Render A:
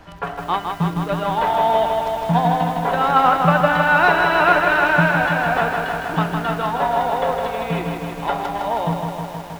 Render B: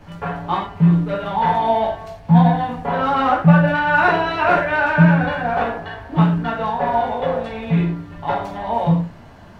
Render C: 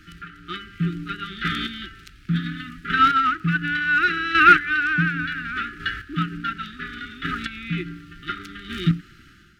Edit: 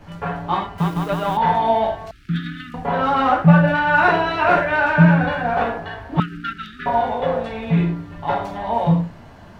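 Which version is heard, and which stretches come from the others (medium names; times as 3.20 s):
B
0.78–1.37 s: from A
2.11–2.74 s: from C
6.20–6.86 s: from C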